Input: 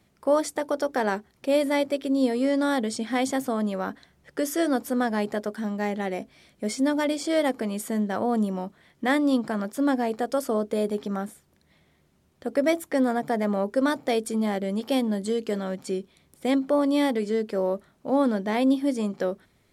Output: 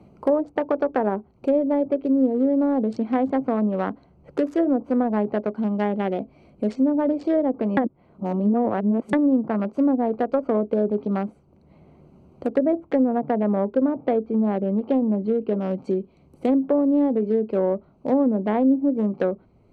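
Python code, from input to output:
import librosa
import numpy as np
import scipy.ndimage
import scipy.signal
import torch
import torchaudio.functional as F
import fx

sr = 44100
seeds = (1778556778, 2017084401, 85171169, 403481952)

y = fx.air_absorb(x, sr, metres=240.0, at=(13.21, 15.71))
y = fx.edit(y, sr, fx.reverse_span(start_s=7.77, length_s=1.36), tone=tone)
y = fx.wiener(y, sr, points=25)
y = fx.env_lowpass_down(y, sr, base_hz=600.0, full_db=-19.5)
y = fx.band_squash(y, sr, depth_pct=40)
y = y * 10.0 ** (4.5 / 20.0)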